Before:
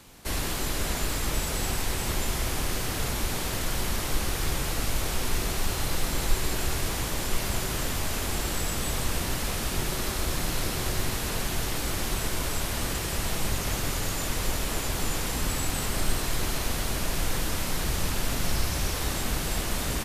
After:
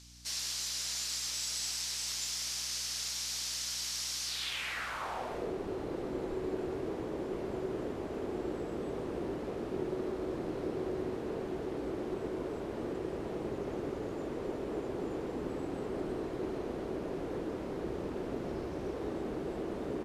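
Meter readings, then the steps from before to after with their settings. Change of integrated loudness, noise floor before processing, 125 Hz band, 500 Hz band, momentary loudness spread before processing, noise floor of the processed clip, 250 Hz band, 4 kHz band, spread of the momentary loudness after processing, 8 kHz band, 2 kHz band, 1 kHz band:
−7.5 dB, −31 dBFS, −14.5 dB, 0.0 dB, 1 LU, −40 dBFS, −2.5 dB, −6.5 dB, 5 LU, −8.5 dB, −12.0 dB, −9.5 dB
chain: band-pass filter sweep 5,400 Hz → 380 Hz, 0:04.24–0:05.54
mains hum 60 Hz, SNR 20 dB
level +4 dB

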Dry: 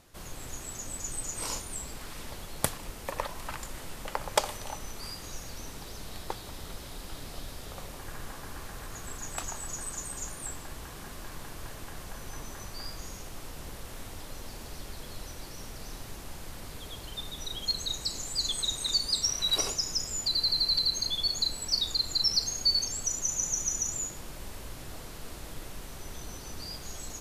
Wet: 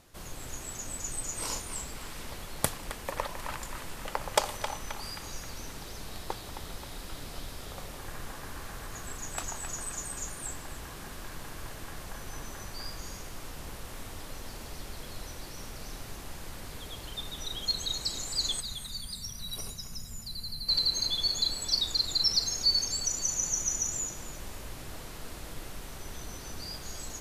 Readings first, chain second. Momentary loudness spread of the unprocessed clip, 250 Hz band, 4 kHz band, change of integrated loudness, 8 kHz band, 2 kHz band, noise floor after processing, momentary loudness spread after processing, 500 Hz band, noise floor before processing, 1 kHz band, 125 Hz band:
18 LU, 0.0 dB, −1.5 dB, −3.0 dB, −0.5 dB, +1.0 dB, −44 dBFS, 17 LU, 0.0 dB, −44 dBFS, +0.5 dB, 0.0 dB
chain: gain on a spectral selection 0:18.60–0:20.68, 250–8,600 Hz −13 dB
on a send: feedback echo with a band-pass in the loop 265 ms, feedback 63%, band-pass 1,700 Hz, level −6 dB

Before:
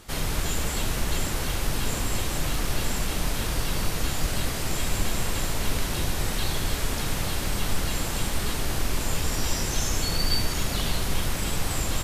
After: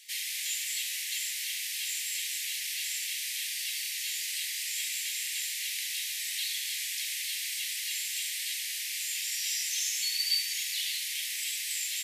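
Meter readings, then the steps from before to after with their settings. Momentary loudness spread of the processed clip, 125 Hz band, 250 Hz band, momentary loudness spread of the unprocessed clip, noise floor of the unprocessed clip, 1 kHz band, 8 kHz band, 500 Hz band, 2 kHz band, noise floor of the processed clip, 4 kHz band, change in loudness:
4 LU, below −40 dB, below −40 dB, 2 LU, −29 dBFS, below −40 dB, 0.0 dB, below −40 dB, −3.0 dB, −36 dBFS, 0.0 dB, −2.5 dB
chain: Butterworth high-pass 1,900 Hz 72 dB per octave

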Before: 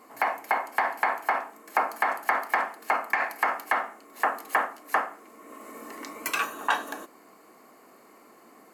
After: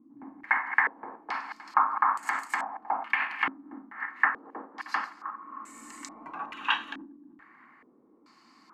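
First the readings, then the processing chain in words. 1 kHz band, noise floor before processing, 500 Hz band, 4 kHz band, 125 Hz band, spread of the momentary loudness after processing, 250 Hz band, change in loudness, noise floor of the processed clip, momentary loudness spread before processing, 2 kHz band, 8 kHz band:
−3.0 dB, −55 dBFS, −14.0 dB, +1.5 dB, can't be measured, 18 LU, −1.5 dB, −1.5 dB, −60 dBFS, 15 LU, −1.0 dB, −7.0 dB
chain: feedback delay that plays each chunk backwards 156 ms, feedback 44%, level −10.5 dB
flat-topped bell 530 Hz −14.5 dB 1.1 octaves
low-pass on a step sequencer 2.3 Hz 290–7,700 Hz
level −4.5 dB

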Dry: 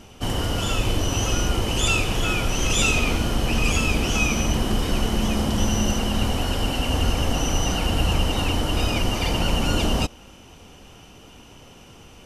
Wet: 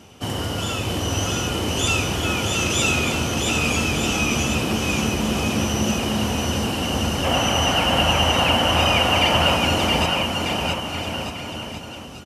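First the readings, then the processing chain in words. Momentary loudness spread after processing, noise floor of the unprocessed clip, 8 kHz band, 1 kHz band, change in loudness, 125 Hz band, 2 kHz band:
10 LU, −47 dBFS, +2.0 dB, +6.5 dB, +2.5 dB, 0.0 dB, +4.5 dB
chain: gain on a spectral selection 0:07.24–0:09.56, 500–3,400 Hz +8 dB
high-pass filter 75 Hz 24 dB per octave
bouncing-ball delay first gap 670 ms, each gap 0.85×, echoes 5

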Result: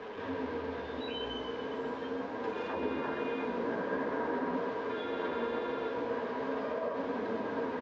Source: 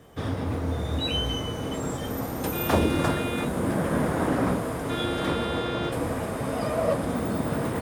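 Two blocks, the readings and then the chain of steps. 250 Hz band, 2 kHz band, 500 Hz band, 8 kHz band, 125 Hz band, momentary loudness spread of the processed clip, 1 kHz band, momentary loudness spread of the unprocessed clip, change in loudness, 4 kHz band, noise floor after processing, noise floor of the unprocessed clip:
−10.0 dB, −6.0 dB, −5.5 dB, below −25 dB, −22.5 dB, 4 LU, −6.0 dB, 6 LU, −8.5 dB, −13.0 dB, −40 dBFS, −32 dBFS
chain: linear delta modulator 64 kbit/s, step −29.5 dBFS
three-way crossover with the lows and the highs turned down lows −17 dB, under 350 Hz, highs −23 dB, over 4,100 Hz
brickwall limiter −22.5 dBFS, peak gain reduction 9.5 dB
hollow resonant body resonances 250/430/960/1,600 Hz, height 12 dB, ringing for 40 ms
flanger 0.41 Hz, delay 8.8 ms, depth 8.6 ms, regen +34%
high-frequency loss of the air 90 metres
single-tap delay 131 ms −8 dB
downsampling to 16,000 Hz
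level −5.5 dB

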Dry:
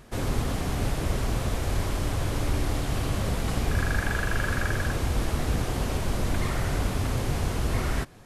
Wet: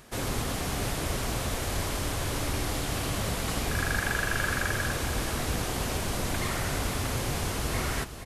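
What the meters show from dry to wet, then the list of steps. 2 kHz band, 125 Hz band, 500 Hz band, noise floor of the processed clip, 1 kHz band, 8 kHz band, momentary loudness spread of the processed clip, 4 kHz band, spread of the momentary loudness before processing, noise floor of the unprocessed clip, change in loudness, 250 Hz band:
+1.5 dB, −5.0 dB, −1.0 dB, −33 dBFS, 0.0 dB, +4.5 dB, 3 LU, +3.0 dB, 2 LU, −31 dBFS, −1.5 dB, −3.0 dB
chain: spectral tilt +1.5 dB per octave
on a send: single-tap delay 475 ms −11.5 dB

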